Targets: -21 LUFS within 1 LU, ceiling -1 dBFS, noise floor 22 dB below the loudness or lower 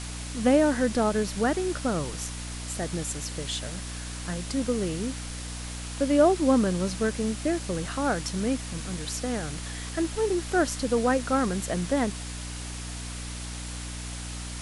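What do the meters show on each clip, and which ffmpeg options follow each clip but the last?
hum 60 Hz; highest harmonic 300 Hz; hum level -35 dBFS; noise floor -36 dBFS; noise floor target -50 dBFS; loudness -28.0 LUFS; peak level -8.5 dBFS; loudness target -21.0 LUFS
-> -af "bandreject=f=60:t=h:w=4,bandreject=f=120:t=h:w=4,bandreject=f=180:t=h:w=4,bandreject=f=240:t=h:w=4,bandreject=f=300:t=h:w=4"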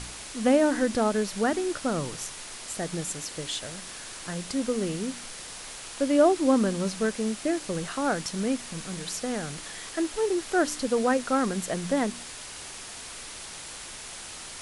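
hum not found; noise floor -41 dBFS; noise floor target -51 dBFS
-> -af "afftdn=nr=10:nf=-41"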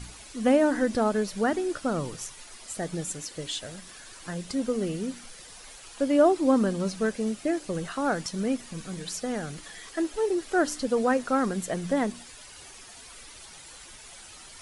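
noise floor -47 dBFS; noise floor target -50 dBFS
-> -af "afftdn=nr=6:nf=-47"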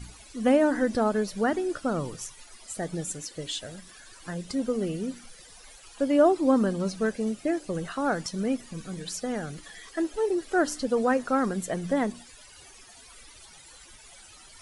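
noise floor -51 dBFS; loudness -27.5 LUFS; peak level -9.0 dBFS; loudness target -21.0 LUFS
-> -af "volume=2.11"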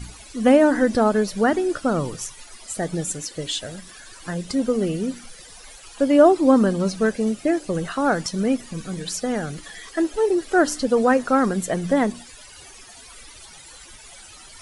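loudness -21.0 LUFS; peak level -2.5 dBFS; noise floor -44 dBFS

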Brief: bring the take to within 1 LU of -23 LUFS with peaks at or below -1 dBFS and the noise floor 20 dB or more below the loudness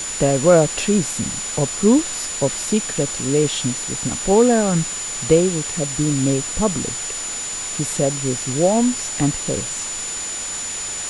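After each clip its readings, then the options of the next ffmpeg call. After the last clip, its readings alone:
steady tone 7 kHz; tone level -26 dBFS; noise floor -27 dBFS; noise floor target -40 dBFS; loudness -19.5 LUFS; peak level -1.5 dBFS; loudness target -23.0 LUFS
-> -af "bandreject=f=7000:w=30"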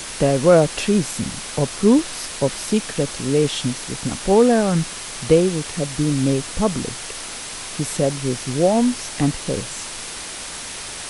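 steady tone not found; noise floor -32 dBFS; noise floor target -41 dBFS
-> -af "afftdn=nr=9:nf=-32"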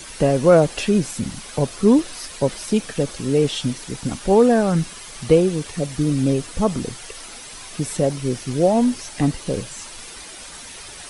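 noise floor -38 dBFS; noise floor target -40 dBFS
-> -af "afftdn=nr=6:nf=-38"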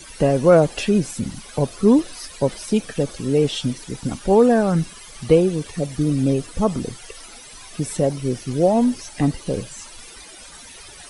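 noise floor -41 dBFS; loudness -20.0 LUFS; peak level -2.0 dBFS; loudness target -23.0 LUFS
-> -af "volume=0.708"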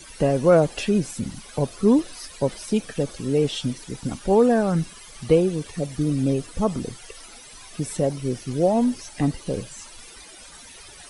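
loudness -23.0 LUFS; peak level -5.0 dBFS; noise floor -44 dBFS

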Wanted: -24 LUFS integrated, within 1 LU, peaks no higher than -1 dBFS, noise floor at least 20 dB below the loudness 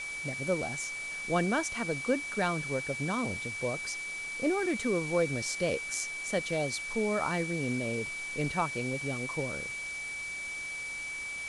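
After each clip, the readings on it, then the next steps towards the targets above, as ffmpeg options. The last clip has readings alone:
steady tone 2.3 kHz; tone level -36 dBFS; noise floor -39 dBFS; noise floor target -52 dBFS; loudness -32.0 LUFS; peak level -15.5 dBFS; loudness target -24.0 LUFS
-> -af "bandreject=f=2300:w=30"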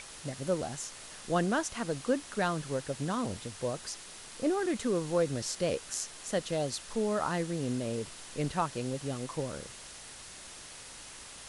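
steady tone not found; noise floor -48 dBFS; noise floor target -54 dBFS
-> -af "afftdn=nr=6:nf=-48"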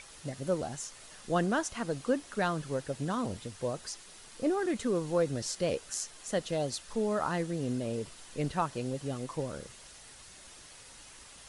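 noise floor -52 dBFS; noise floor target -54 dBFS
-> -af "afftdn=nr=6:nf=-52"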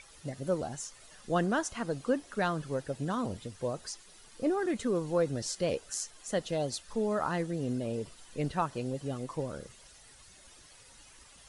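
noise floor -56 dBFS; loudness -33.5 LUFS; peak level -16.5 dBFS; loudness target -24.0 LUFS
-> -af "volume=2.99"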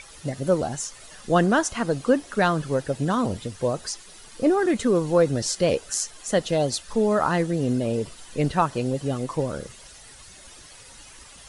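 loudness -24.0 LUFS; peak level -7.0 dBFS; noise floor -47 dBFS

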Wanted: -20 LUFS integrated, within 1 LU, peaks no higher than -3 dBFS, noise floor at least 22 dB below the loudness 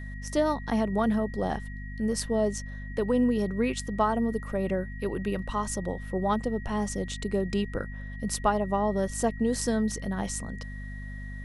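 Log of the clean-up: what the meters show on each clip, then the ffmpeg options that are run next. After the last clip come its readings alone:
hum 50 Hz; highest harmonic 250 Hz; hum level -36 dBFS; steady tone 1.9 kHz; tone level -45 dBFS; loudness -29.0 LUFS; peak level -10.5 dBFS; loudness target -20.0 LUFS
-> -af "bandreject=f=50:t=h:w=6,bandreject=f=100:t=h:w=6,bandreject=f=150:t=h:w=6,bandreject=f=200:t=h:w=6,bandreject=f=250:t=h:w=6"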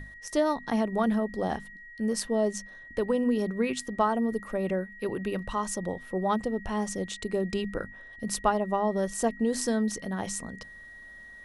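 hum not found; steady tone 1.9 kHz; tone level -45 dBFS
-> -af "bandreject=f=1900:w=30"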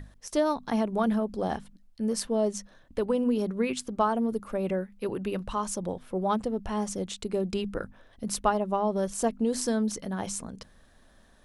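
steady tone not found; loudness -29.5 LUFS; peak level -10.5 dBFS; loudness target -20.0 LUFS
-> -af "volume=2.99,alimiter=limit=0.708:level=0:latency=1"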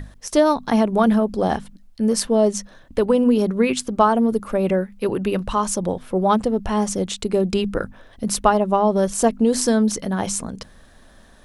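loudness -20.0 LUFS; peak level -3.0 dBFS; noise floor -49 dBFS

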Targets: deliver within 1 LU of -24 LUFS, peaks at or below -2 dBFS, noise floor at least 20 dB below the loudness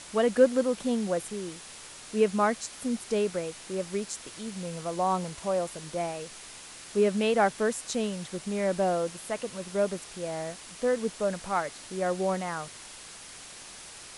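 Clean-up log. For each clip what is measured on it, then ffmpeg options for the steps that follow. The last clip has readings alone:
noise floor -46 dBFS; noise floor target -50 dBFS; loudness -29.5 LUFS; peak level -8.5 dBFS; loudness target -24.0 LUFS
-> -af "afftdn=nr=6:nf=-46"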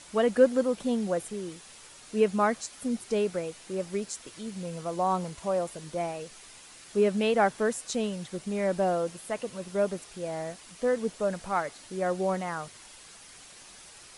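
noise floor -50 dBFS; loudness -29.5 LUFS; peak level -8.5 dBFS; loudness target -24.0 LUFS
-> -af "volume=1.88"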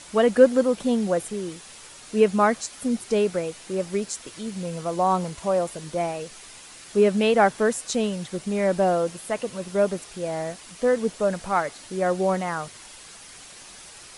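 loudness -24.0 LUFS; peak level -3.0 dBFS; noise floor -45 dBFS

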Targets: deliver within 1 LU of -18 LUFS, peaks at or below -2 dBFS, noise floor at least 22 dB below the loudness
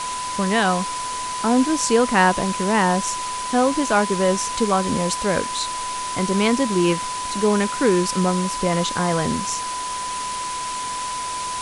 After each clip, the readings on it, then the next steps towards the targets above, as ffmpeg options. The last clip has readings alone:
steady tone 1 kHz; tone level -26 dBFS; noise floor -28 dBFS; noise floor target -43 dBFS; loudness -21.0 LUFS; peak level -3.5 dBFS; loudness target -18.0 LUFS
-> -af "bandreject=f=1000:w=30"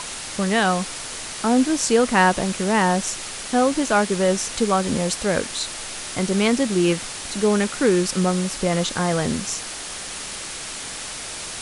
steady tone not found; noise floor -33 dBFS; noise floor target -44 dBFS
-> -af "afftdn=nr=11:nf=-33"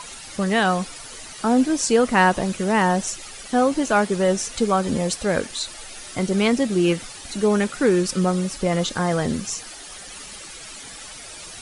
noise floor -39 dBFS; noise floor target -44 dBFS
-> -af "afftdn=nr=6:nf=-39"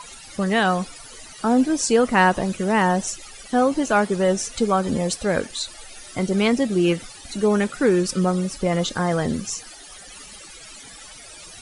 noise floor -42 dBFS; noise floor target -44 dBFS
-> -af "afftdn=nr=6:nf=-42"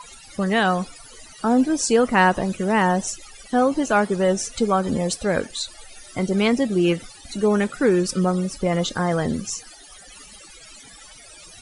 noise floor -45 dBFS; loudness -21.5 LUFS; peak level -4.5 dBFS; loudness target -18.0 LUFS
-> -af "volume=1.5,alimiter=limit=0.794:level=0:latency=1"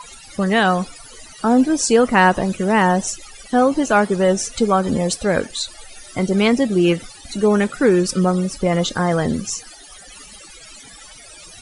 loudness -18.0 LUFS; peak level -2.0 dBFS; noise floor -42 dBFS

